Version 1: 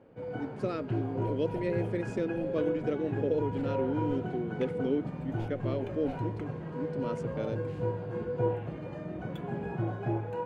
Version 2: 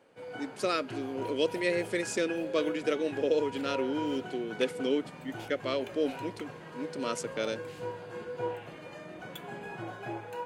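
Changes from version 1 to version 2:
speech +7.5 dB; master: add tilt +4.5 dB/oct

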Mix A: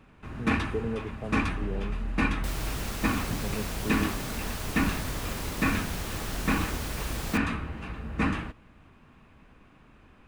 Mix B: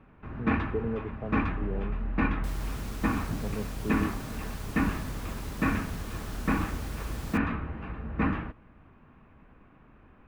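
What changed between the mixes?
first sound: add LPF 1900 Hz 12 dB/oct; second sound -8.5 dB

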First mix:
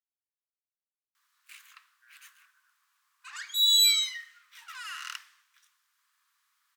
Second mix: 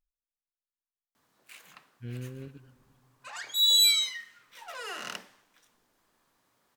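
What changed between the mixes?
speech: remove brick-wall FIR low-pass 2000 Hz; master: remove steep high-pass 1100 Hz 48 dB/oct

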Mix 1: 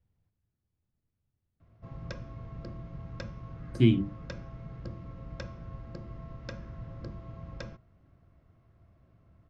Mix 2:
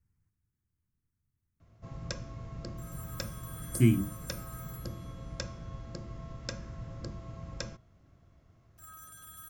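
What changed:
speech: add fixed phaser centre 1500 Hz, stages 4; second sound: unmuted; master: remove air absorption 220 m

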